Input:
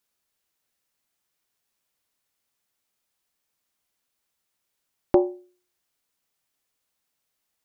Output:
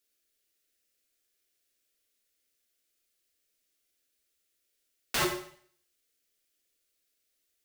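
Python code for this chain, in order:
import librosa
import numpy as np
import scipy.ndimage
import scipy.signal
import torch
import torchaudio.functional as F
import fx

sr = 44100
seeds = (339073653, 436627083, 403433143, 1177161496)

y = fx.fixed_phaser(x, sr, hz=380.0, stages=4)
y = (np.mod(10.0 ** (23.5 / 20.0) * y + 1.0, 2.0) - 1.0) / 10.0 ** (23.5 / 20.0)
y = fx.rev_schroeder(y, sr, rt60_s=0.55, comb_ms=33, drr_db=4.0)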